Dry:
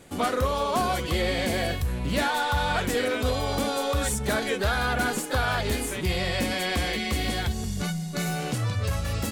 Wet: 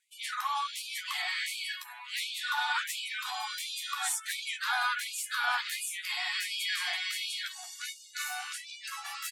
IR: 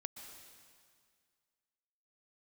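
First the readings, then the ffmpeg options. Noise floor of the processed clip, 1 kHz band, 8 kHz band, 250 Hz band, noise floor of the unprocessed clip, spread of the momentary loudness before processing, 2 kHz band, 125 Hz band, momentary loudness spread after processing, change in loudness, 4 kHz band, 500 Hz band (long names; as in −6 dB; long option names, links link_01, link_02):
−49 dBFS, −7.5 dB, −2.5 dB, below −40 dB, −32 dBFS, 4 LU, −3.5 dB, below −40 dB, 9 LU, −6.5 dB, −2.0 dB, −29.5 dB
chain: -filter_complex "[0:a]afftdn=noise_reduction=19:noise_floor=-47,asplit=2[link_01][link_02];[link_02]adelay=13,volume=-7dB[link_03];[link_01][link_03]amix=inputs=2:normalize=0,afftfilt=real='re*gte(b*sr/1024,670*pow(2300/670,0.5+0.5*sin(2*PI*1.4*pts/sr)))':imag='im*gte(b*sr/1024,670*pow(2300/670,0.5+0.5*sin(2*PI*1.4*pts/sr)))':win_size=1024:overlap=0.75,volume=-2.5dB"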